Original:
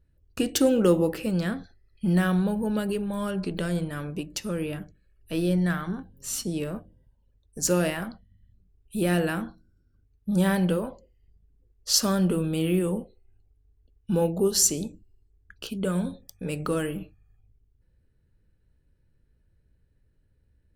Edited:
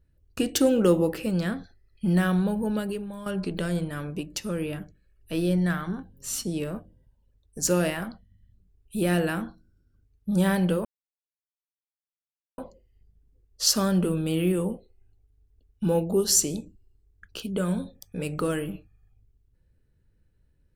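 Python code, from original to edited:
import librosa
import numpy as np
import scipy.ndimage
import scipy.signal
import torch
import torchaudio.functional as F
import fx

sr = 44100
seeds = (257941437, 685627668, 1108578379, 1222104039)

y = fx.edit(x, sr, fx.fade_out_to(start_s=2.69, length_s=0.57, floor_db=-11.5),
    fx.insert_silence(at_s=10.85, length_s=1.73), tone=tone)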